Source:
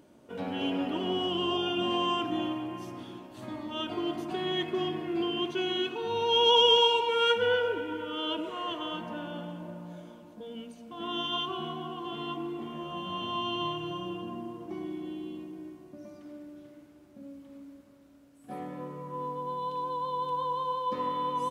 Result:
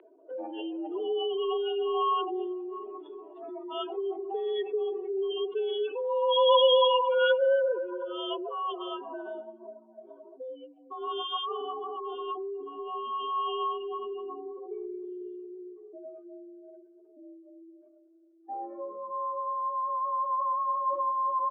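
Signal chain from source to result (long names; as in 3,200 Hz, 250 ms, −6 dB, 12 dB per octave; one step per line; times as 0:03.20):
expanding power law on the bin magnitudes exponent 2.5
single-sideband voice off tune +51 Hz 340–2,900 Hz
one half of a high-frequency compander encoder only
level +3 dB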